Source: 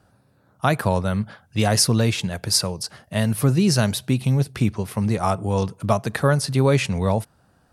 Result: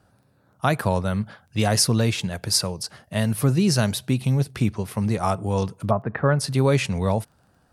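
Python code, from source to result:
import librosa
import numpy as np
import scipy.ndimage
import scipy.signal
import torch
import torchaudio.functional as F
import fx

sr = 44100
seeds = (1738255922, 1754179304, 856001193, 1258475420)

y = fx.lowpass(x, sr, hz=fx.line((5.89, 1300.0), (6.39, 3000.0)), slope=24, at=(5.89, 6.39), fade=0.02)
y = fx.dmg_crackle(y, sr, seeds[0], per_s=15.0, level_db=-45.0)
y = y * librosa.db_to_amplitude(-1.5)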